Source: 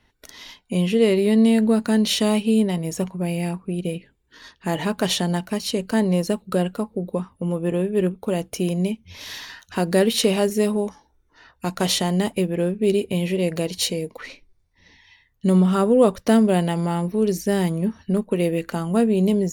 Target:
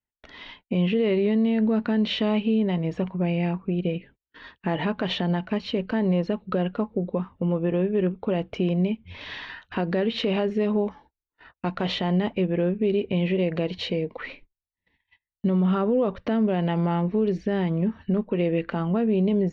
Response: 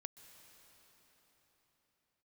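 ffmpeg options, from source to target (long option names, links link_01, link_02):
-filter_complex "[0:a]agate=range=-33dB:threshold=-49dB:ratio=16:detection=peak,asplit=2[link_01][link_02];[link_02]acompressor=threshold=-25dB:ratio=6,volume=-3dB[link_03];[link_01][link_03]amix=inputs=2:normalize=0,lowpass=frequency=3200:width=0.5412,lowpass=frequency=3200:width=1.3066,alimiter=limit=-12dB:level=0:latency=1:release=62,volume=-3dB"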